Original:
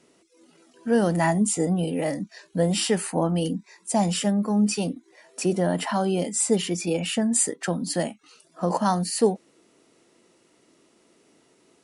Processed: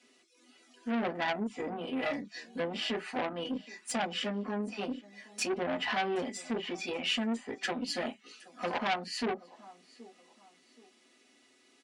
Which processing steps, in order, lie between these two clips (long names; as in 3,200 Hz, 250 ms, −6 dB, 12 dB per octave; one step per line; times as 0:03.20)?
treble cut that deepens with the level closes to 1,100 Hz, closed at −18 dBFS
low-shelf EQ 280 Hz −8.5 dB
repeating echo 775 ms, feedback 34%, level −22.5 dB
convolution reverb, pre-delay 4 ms, DRR −4.5 dB
tube saturation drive 18 dB, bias 0.65
meter weighting curve D
level −8.5 dB